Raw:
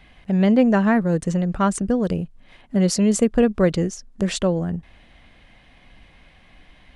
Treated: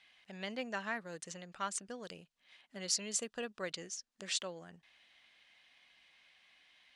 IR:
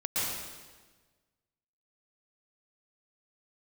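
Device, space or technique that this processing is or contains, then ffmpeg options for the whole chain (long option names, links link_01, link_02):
piezo pickup straight into a mixer: -filter_complex "[0:a]lowpass=5200,aderivative,asettb=1/sr,asplit=3[link_01][link_02][link_03];[link_01]atrim=end=3.194[link_04];[link_02]atrim=start=3.19:end=3.63,asetpts=PTS-STARTPTS,afade=type=in:duration=0.004:curve=qsin,afade=type=out:start_time=0.436:duration=0.004:curve=qsin,bandreject=frequency=2200:width=6.8[link_05];[link_03]atrim=start=3.626[link_06];[link_04][link_05]acrossfade=duration=0.004:curve1=hsin:curve2=qsin[link_07];[link_07][link_06]acrossfade=duration=0.004:curve1=qsin:curve2=hsin"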